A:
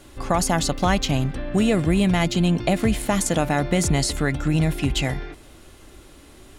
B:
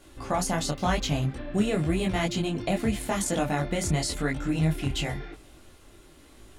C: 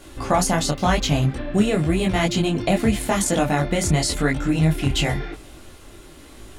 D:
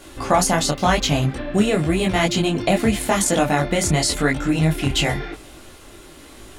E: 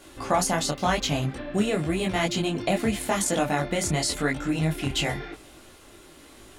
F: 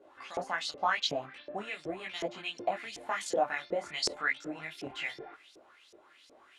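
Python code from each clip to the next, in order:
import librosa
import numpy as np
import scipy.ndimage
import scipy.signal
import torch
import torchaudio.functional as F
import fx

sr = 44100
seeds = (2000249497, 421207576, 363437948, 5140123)

y1 = fx.detune_double(x, sr, cents=32)
y1 = y1 * librosa.db_to_amplitude(-2.0)
y2 = fx.rider(y1, sr, range_db=10, speed_s=0.5)
y2 = y2 * librosa.db_to_amplitude(7.0)
y3 = fx.low_shelf(y2, sr, hz=200.0, db=-5.5)
y3 = y3 * librosa.db_to_amplitude(3.0)
y4 = fx.low_shelf(y3, sr, hz=80.0, db=-5.5)
y4 = y4 * librosa.db_to_amplitude(-6.0)
y5 = fx.filter_lfo_bandpass(y4, sr, shape='saw_up', hz=2.7, low_hz=410.0, high_hz=5800.0, q=3.6)
y5 = y5 * librosa.db_to_amplitude(1.5)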